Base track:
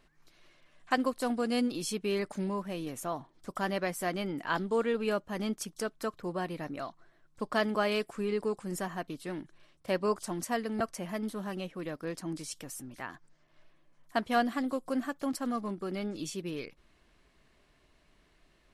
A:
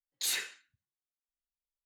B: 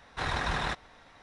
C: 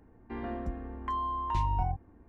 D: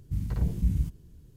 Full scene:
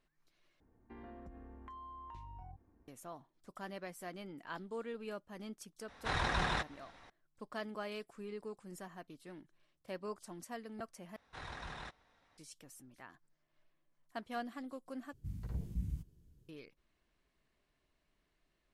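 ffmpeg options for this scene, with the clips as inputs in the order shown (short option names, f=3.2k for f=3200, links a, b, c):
-filter_complex "[2:a]asplit=2[a][b];[0:a]volume=-13.5dB[c];[3:a]acompressor=threshold=-35dB:ratio=6:attack=3.2:release=140:knee=1:detection=peak[d];[a]acontrast=59[e];[c]asplit=4[f][g][h][i];[f]atrim=end=0.604[j];[d]atrim=end=2.28,asetpts=PTS-STARTPTS,volume=-12dB[k];[g]atrim=start=2.876:end=11.164[l];[b]atrim=end=1.22,asetpts=PTS-STARTPTS,volume=-16dB[m];[h]atrim=start=12.376:end=15.134[n];[4:a]atrim=end=1.36,asetpts=PTS-STARTPTS,volume=-13dB[o];[i]atrim=start=16.486[p];[e]atrim=end=1.22,asetpts=PTS-STARTPTS,volume=-9.5dB,afade=t=in:d=0.004:c=hsin,afade=t=out:st=1.216:d=0.004:c=hsin,adelay=5880[q];[j][k]acrossfade=d=0.004:c1=hsin:c2=hsin[r];[r][l]acrossfade=d=0.004:c1=hsin:c2=hsin[s];[s][m]acrossfade=d=0.004:c1=hsin:c2=hsin[t];[t][n]acrossfade=d=0.004:c1=hsin:c2=hsin[u];[u][o]acrossfade=d=0.004:c1=hsin:c2=hsin[v];[v][p]acrossfade=d=0.004:c1=hsin:c2=hsin[w];[w][q]amix=inputs=2:normalize=0"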